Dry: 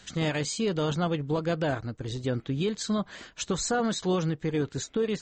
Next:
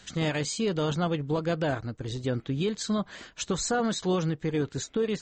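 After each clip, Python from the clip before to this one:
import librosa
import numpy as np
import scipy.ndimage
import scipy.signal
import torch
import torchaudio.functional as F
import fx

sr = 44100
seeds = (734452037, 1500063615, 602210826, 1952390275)

y = x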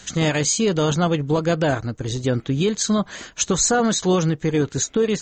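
y = fx.peak_eq(x, sr, hz=6500.0, db=9.0, octaves=0.24)
y = y * librosa.db_to_amplitude(8.0)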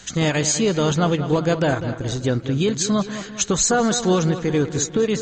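y = fx.echo_wet_lowpass(x, sr, ms=199, feedback_pct=52, hz=3900.0, wet_db=-11.0)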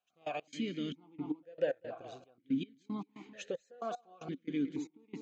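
y = fx.step_gate(x, sr, bpm=114, pattern='..x.xxx..x', floor_db=-24.0, edge_ms=4.5)
y = fx.vowel_held(y, sr, hz=2.1)
y = y * librosa.db_to_amplitude(-4.5)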